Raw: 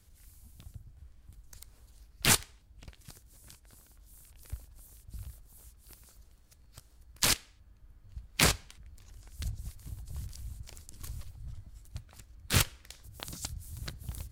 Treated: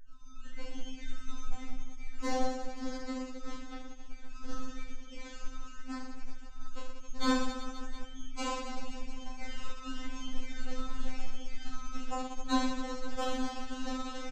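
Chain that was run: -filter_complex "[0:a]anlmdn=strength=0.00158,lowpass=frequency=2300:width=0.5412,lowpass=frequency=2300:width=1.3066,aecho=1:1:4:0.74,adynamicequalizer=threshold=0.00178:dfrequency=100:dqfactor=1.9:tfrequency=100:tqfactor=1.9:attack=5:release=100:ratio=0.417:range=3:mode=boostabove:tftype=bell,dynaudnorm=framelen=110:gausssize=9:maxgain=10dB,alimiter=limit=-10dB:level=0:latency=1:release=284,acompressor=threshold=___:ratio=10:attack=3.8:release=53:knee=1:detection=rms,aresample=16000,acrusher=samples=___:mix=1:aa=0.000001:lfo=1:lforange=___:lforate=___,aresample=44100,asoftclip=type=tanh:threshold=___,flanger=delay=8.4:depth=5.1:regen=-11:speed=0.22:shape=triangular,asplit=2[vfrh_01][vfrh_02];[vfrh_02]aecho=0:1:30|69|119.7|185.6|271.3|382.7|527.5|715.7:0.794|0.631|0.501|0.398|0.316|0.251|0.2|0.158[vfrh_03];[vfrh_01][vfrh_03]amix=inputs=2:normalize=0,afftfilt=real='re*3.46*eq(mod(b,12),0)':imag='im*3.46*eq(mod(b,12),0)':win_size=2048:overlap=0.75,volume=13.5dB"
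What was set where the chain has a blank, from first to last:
-36dB, 9, 9, 0.95, -27.5dB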